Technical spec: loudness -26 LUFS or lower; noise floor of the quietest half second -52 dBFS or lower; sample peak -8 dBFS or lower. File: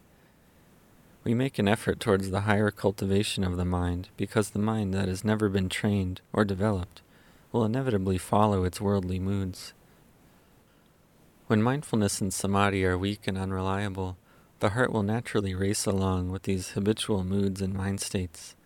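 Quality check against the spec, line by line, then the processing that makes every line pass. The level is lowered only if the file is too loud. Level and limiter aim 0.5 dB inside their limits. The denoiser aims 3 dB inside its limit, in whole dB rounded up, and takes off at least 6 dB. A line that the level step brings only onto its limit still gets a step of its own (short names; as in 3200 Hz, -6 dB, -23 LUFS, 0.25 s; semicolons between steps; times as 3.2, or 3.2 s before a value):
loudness -28.0 LUFS: OK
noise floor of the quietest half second -61 dBFS: OK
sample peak -7.0 dBFS: fail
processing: limiter -8.5 dBFS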